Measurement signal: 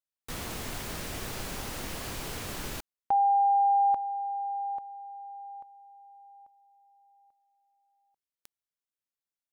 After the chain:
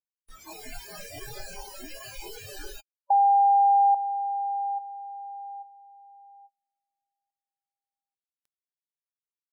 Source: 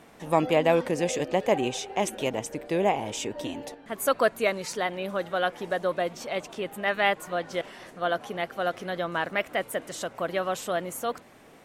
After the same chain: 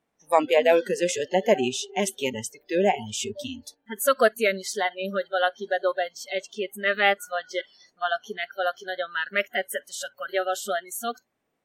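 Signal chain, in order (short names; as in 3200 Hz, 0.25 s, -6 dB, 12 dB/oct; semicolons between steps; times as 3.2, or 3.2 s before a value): spectral noise reduction 29 dB; gain +4 dB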